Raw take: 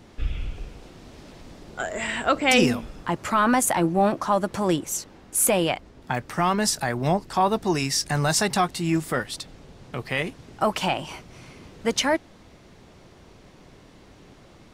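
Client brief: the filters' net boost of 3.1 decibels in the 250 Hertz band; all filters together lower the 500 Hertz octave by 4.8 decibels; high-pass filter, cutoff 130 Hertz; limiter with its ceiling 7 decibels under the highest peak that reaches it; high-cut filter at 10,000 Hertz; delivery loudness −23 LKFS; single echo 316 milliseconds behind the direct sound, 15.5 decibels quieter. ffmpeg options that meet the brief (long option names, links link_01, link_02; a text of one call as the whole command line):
ffmpeg -i in.wav -af "highpass=130,lowpass=10000,equalizer=frequency=250:width_type=o:gain=7,equalizer=frequency=500:width_type=o:gain=-9,alimiter=limit=-13.5dB:level=0:latency=1,aecho=1:1:316:0.168,volume=2.5dB" out.wav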